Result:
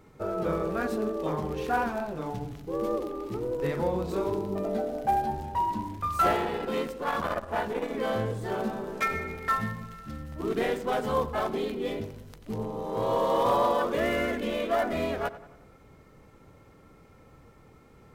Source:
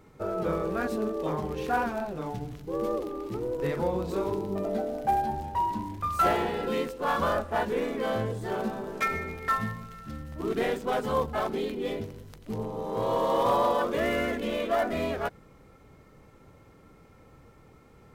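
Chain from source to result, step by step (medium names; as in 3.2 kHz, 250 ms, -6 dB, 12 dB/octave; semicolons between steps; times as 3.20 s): on a send: tape echo 91 ms, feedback 54%, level -14.5 dB, low-pass 3 kHz; 6.36–7.94 s: on the sum: transformer saturation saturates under 590 Hz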